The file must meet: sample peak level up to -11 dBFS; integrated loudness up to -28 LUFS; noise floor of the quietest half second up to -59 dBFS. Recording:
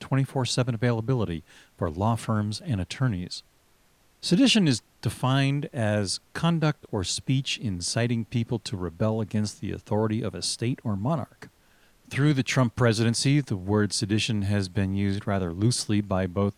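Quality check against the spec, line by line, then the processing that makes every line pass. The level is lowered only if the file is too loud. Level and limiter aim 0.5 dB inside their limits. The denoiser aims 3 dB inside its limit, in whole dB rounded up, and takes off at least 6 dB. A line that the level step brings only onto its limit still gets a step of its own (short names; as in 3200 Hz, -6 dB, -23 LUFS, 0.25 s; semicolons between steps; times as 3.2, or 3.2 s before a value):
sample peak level -7.5 dBFS: fail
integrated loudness -26.0 LUFS: fail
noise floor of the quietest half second -62 dBFS: OK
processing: gain -2.5 dB; limiter -11.5 dBFS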